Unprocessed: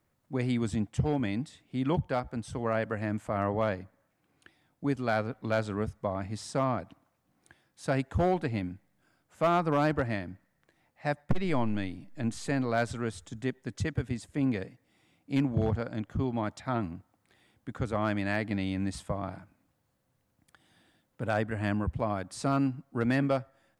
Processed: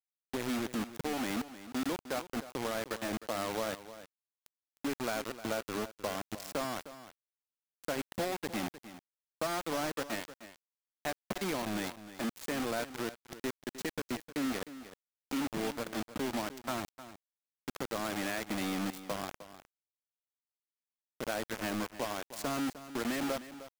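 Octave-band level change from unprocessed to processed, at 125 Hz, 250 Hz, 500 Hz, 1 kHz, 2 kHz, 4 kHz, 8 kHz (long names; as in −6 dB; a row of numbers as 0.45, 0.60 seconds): −15.0, −6.0, −5.5, −5.0, −2.5, +4.0, +5.5 decibels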